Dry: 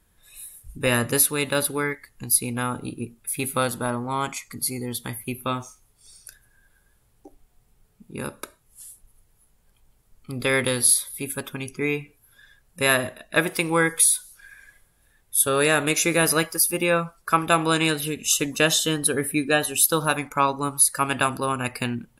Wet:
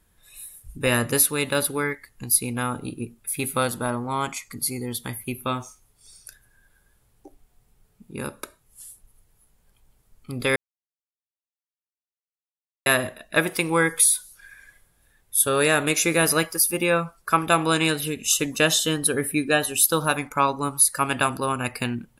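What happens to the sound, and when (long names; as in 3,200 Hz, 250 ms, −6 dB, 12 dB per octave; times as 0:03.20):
0:10.56–0:12.86: silence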